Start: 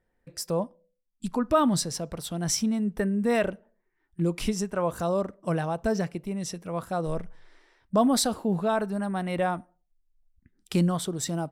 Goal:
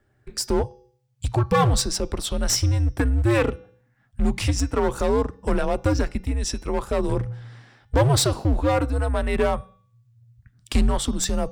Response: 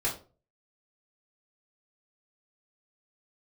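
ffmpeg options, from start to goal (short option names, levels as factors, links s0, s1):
-filter_complex "[0:a]equalizer=f=12000:w=3.7:g=-14,bandreject=f=316.4:t=h:w=4,bandreject=f=632.8:t=h:w=4,bandreject=f=949.2:t=h:w=4,bandreject=f=1265.6:t=h:w=4,bandreject=f=1582:t=h:w=4,bandreject=f=1898.4:t=h:w=4,bandreject=f=2214.8:t=h:w=4,bandreject=f=2531.2:t=h:w=4,bandreject=f=2847.6:t=h:w=4,bandreject=f=3164:t=h:w=4,bandreject=f=3480.4:t=h:w=4,bandreject=f=3796.8:t=h:w=4,bandreject=f=4113.2:t=h:w=4,bandreject=f=4429.6:t=h:w=4,bandreject=f=4746:t=h:w=4,bandreject=f=5062.4:t=h:w=4,bandreject=f=5378.8:t=h:w=4,bandreject=f=5695.2:t=h:w=4,bandreject=f=6011.6:t=h:w=4,bandreject=f=6328:t=h:w=4,bandreject=f=6644.4:t=h:w=4,asplit=2[s0][s1];[s1]acompressor=threshold=0.0224:ratio=6,volume=0.794[s2];[s0][s2]amix=inputs=2:normalize=0,aeval=exprs='clip(val(0),-1,0.0668)':c=same,afreqshift=-130,volume=1.68"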